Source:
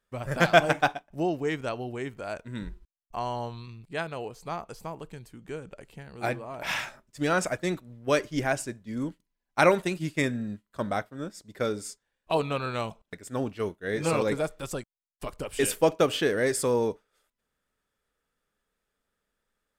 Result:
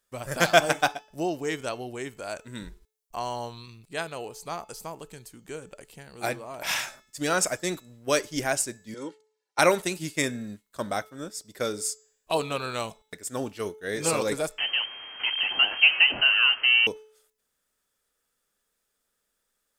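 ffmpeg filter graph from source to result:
-filter_complex "[0:a]asettb=1/sr,asplit=3[a][b][c];[a]atrim=end=8.944[d];[b]atrim=start=8.94:end=9.59,asetpts=PTS-STARTPTS,afade=t=in:d=0.004:c=qsin,afade=t=out:st=0.646:d=0.004:c=qsin,highpass=270,lowpass=5.5k,aecho=1:1:2.2:0.95,atrim=end_sample=28665[e];[c]atrim=start=9.586[f];[d][e]acrossfade=d=0.004:c1=hsin:c2=qsin[g];[g][f]acrossfade=d=0.004:c1=qsin:c2=hsin,asettb=1/sr,asplit=3[h][i][j];[h]atrim=end=14.584[k];[i]atrim=start=14.58:end=16.87,asetpts=PTS-STARTPTS,afade=t=in:d=0.004:c=qsin,afade=t=out:st=2.286:d=0.004:c=qsin,aeval=exprs='val(0)+0.5*0.0447*sgn(val(0))':c=same,lowpass=f=2.7k:t=q:w=0.5098,lowpass=f=2.7k:t=q:w=0.6013,lowpass=f=2.7k:t=q:w=0.9,lowpass=f=2.7k:t=q:w=2.563,afreqshift=-3200[l];[j]atrim=start=16.866[m];[k][l]acrossfade=d=0.004:c1=hsin:c2=qsin[n];[n][m]acrossfade=d=0.004:c1=qsin:c2=hsin,bass=f=250:g=-5,treble=f=4k:g=11,bandreject=f=432.9:t=h:w=4,bandreject=f=865.8:t=h:w=4,bandreject=f=1.2987k:t=h:w=4,bandreject=f=1.7316k:t=h:w=4,bandreject=f=2.1645k:t=h:w=4,bandreject=f=2.5974k:t=h:w=4,bandreject=f=3.0303k:t=h:w=4,bandreject=f=3.4632k:t=h:w=4,bandreject=f=3.8961k:t=h:w=4,bandreject=f=4.329k:t=h:w=4,bandreject=f=4.7619k:t=h:w=4,bandreject=f=5.1948k:t=h:w=4,bandreject=f=5.6277k:t=h:w=4,bandreject=f=6.0606k:t=h:w=4,bandreject=f=6.4935k:t=h:w=4,bandreject=f=6.9264k:t=h:w=4,bandreject=f=7.3593k:t=h:w=4,bandreject=f=7.7922k:t=h:w=4"

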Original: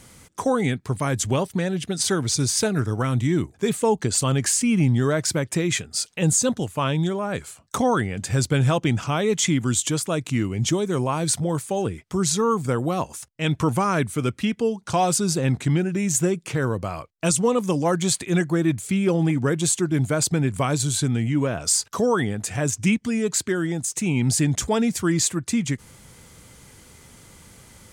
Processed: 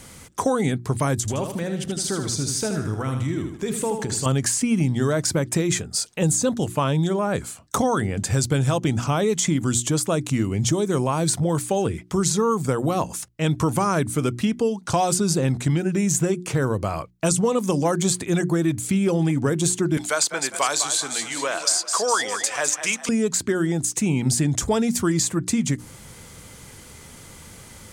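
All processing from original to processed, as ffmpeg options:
-filter_complex "[0:a]asettb=1/sr,asplit=3[a][b][c];[a]atrim=end=1.204[d];[b]atrim=start=1.2:end=4.26,asetpts=PTS-STARTPTS,afade=t=in:d=0.004:c=qsin,afade=t=out:st=3.056:d=0.004:c=qsin,acompressor=threshold=-29dB:ratio=3:attack=3.2:release=140:knee=1:detection=peak,aecho=1:1:78|156|234|312|390:0.447|0.174|0.0679|0.0265|0.0103,atrim=end_sample=134946[e];[c]atrim=start=4.256[f];[d][e]acrossfade=d=0.004:c1=hsin:c2=qsin[g];[g][f]acrossfade=d=0.004:c1=qsin:c2=hsin,asettb=1/sr,asplit=3[h][i][j];[h]atrim=end=19.974[k];[i]atrim=start=19.97:end=23.09,asetpts=PTS-STARTPTS,afade=t=in:d=0.004:c=qsin,afade=t=out:st=3.116:d=0.004:c=qsin,highpass=740,equalizer=f=4k:t=o:w=2.6:g=11,asplit=5[l][m][n][o][p];[m]adelay=203,afreqshift=31,volume=-11dB[q];[n]adelay=406,afreqshift=62,volume=-18.3dB[r];[o]adelay=609,afreqshift=93,volume=-25.7dB[s];[p]adelay=812,afreqshift=124,volume=-33dB[t];[l][q][r][s][t]amix=inputs=5:normalize=0,atrim=end_sample=137592[u];[j]atrim=start=23.086[v];[k][u]acrossfade=d=0.004:c1=hsin:c2=qsin[w];[w][v]acrossfade=d=0.004:c1=qsin:c2=hsin,bandreject=f=60:t=h:w=6,bandreject=f=120:t=h:w=6,bandreject=f=180:t=h:w=6,bandreject=f=240:t=h:w=6,bandreject=f=300:t=h:w=6,bandreject=f=360:t=h:w=6,acrossover=split=1600|4100[x][y][z];[x]acompressor=threshold=-23dB:ratio=4[aa];[y]acompressor=threshold=-47dB:ratio=4[ab];[z]acompressor=threshold=-27dB:ratio=4[ac];[aa][ab][ac]amix=inputs=3:normalize=0,volume=5dB"

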